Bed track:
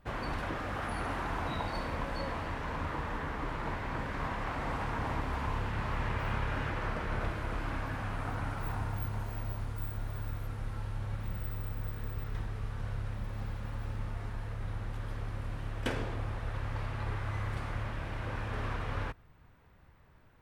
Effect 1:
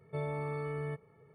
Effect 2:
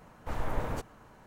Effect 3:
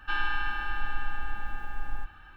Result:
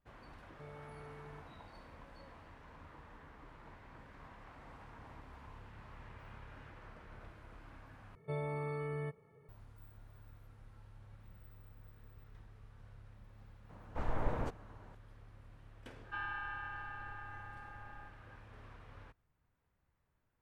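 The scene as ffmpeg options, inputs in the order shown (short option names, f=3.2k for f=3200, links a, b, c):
-filter_complex "[1:a]asplit=2[a][b];[0:a]volume=-19.5dB[c];[2:a]aemphasis=mode=reproduction:type=75kf[d];[3:a]acrossover=split=290 2200:gain=0.0794 1 0.178[e][f][g];[e][f][g]amix=inputs=3:normalize=0[h];[c]asplit=2[i][j];[i]atrim=end=8.154[k];[b]atrim=end=1.34,asetpts=PTS-STARTPTS,volume=-2.5dB[l];[j]atrim=start=9.486[m];[a]atrim=end=1.34,asetpts=PTS-STARTPTS,volume=-16.5dB,afade=t=in:d=0.004:c=hsin,afade=t=out:st=1.336:d=0.004:c=hsin,adelay=460[n];[d]atrim=end=1.26,asetpts=PTS-STARTPTS,volume=-2.5dB,afade=t=in:d=0.004:c=hsin,afade=t=out:st=1.256:d=0.004:c=hsin,adelay=13690[o];[h]atrim=end=2.36,asetpts=PTS-STARTPTS,volume=-8.5dB,afade=t=in:d=0.004:c=hsin,afade=t=out:st=2.356:d=0.004:c=hsin,adelay=707364S[p];[k][l]acrossfade=d=0.004:c1=hsin:c2=hsin[q];[q][m]acrossfade=d=0.004:c1=hsin:c2=hsin[r];[r][n][o][p]amix=inputs=4:normalize=0"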